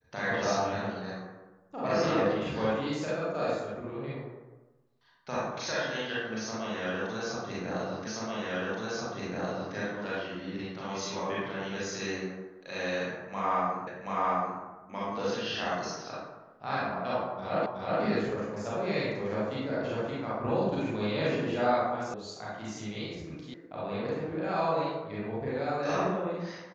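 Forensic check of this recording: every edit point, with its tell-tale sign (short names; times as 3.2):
8.07 repeat of the last 1.68 s
13.87 repeat of the last 0.73 s
17.66 repeat of the last 0.37 s
22.14 sound cut off
23.54 sound cut off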